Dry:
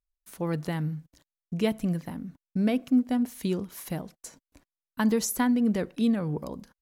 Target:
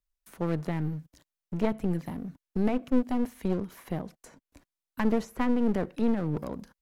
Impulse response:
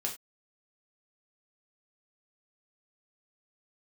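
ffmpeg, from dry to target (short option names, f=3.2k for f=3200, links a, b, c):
-filter_complex "[0:a]acrossover=split=230|2600[a][b][c];[c]acompressor=threshold=-56dB:ratio=6[d];[a][b][d]amix=inputs=3:normalize=0,aeval=exprs='clip(val(0),-1,0.015)':c=same,volume=1.5dB"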